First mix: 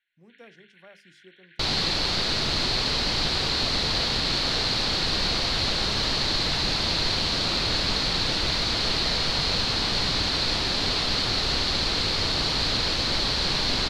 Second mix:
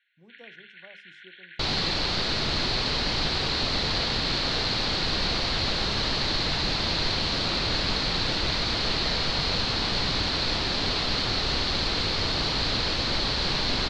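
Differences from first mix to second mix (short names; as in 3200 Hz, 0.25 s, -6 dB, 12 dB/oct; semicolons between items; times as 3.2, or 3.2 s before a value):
speech: add Chebyshev band-stop 1000–5700 Hz; first sound +9.5 dB; master: add air absorption 71 m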